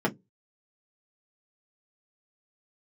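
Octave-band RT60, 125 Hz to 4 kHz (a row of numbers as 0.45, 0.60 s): 0.30, 0.25, 0.20, 0.10, 0.10, 0.10 s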